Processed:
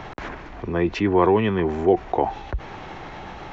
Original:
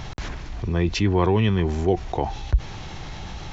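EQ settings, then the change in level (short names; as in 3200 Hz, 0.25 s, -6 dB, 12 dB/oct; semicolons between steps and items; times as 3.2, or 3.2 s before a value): three-band isolator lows -14 dB, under 230 Hz, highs -17 dB, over 2400 Hz; +5.0 dB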